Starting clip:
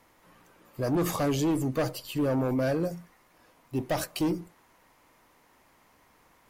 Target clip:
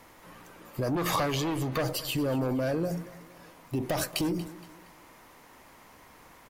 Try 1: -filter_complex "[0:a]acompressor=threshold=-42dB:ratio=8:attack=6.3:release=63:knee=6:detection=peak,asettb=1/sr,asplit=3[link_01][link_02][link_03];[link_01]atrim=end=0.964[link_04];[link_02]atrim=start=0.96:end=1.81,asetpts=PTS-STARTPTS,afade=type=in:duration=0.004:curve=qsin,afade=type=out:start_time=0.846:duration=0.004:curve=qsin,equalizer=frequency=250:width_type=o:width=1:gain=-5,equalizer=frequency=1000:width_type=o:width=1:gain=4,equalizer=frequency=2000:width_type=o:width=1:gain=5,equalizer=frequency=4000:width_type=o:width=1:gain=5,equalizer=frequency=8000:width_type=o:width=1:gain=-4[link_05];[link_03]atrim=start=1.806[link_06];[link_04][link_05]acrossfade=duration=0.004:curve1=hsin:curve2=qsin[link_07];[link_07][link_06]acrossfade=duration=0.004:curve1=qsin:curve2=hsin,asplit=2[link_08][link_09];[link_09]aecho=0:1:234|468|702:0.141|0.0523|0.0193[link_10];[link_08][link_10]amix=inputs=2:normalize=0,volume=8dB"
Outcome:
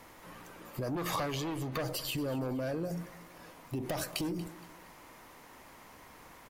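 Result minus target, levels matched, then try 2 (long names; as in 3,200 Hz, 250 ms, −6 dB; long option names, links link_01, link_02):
downward compressor: peak gain reduction +6 dB
-filter_complex "[0:a]acompressor=threshold=-35dB:ratio=8:attack=6.3:release=63:knee=6:detection=peak,asettb=1/sr,asplit=3[link_01][link_02][link_03];[link_01]atrim=end=0.964[link_04];[link_02]atrim=start=0.96:end=1.81,asetpts=PTS-STARTPTS,afade=type=in:duration=0.004:curve=qsin,afade=type=out:start_time=0.846:duration=0.004:curve=qsin,equalizer=frequency=250:width_type=o:width=1:gain=-5,equalizer=frequency=1000:width_type=o:width=1:gain=4,equalizer=frequency=2000:width_type=o:width=1:gain=5,equalizer=frequency=4000:width_type=o:width=1:gain=5,equalizer=frequency=8000:width_type=o:width=1:gain=-4[link_05];[link_03]atrim=start=1.806[link_06];[link_04][link_05]acrossfade=duration=0.004:curve1=hsin:curve2=qsin[link_07];[link_07][link_06]acrossfade=duration=0.004:curve1=qsin:curve2=hsin,asplit=2[link_08][link_09];[link_09]aecho=0:1:234|468|702:0.141|0.0523|0.0193[link_10];[link_08][link_10]amix=inputs=2:normalize=0,volume=8dB"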